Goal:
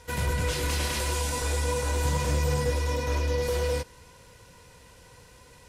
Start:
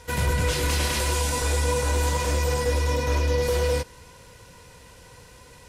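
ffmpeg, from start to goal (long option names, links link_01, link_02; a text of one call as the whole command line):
ffmpeg -i in.wav -filter_complex "[0:a]asettb=1/sr,asplit=3[link_01][link_02][link_03];[link_01]atrim=end=2.054[link_04];[link_02]atrim=start=2.05:end=2.71,asetpts=PTS-STARTPTS,afade=type=in:duration=0.004:curve=qsin,afade=type=out:start_time=0.656:duration=0.004:curve=qsin,equalizer=frequency=140:width=1.3:gain=10[link_05];[link_03]atrim=start=2.706[link_06];[link_04][link_05]acrossfade=duration=0.004:curve1=hsin:curve2=qsin[link_07];[link_07][link_06]acrossfade=duration=0.004:curve1=qsin:curve2=hsin,volume=-4dB" out.wav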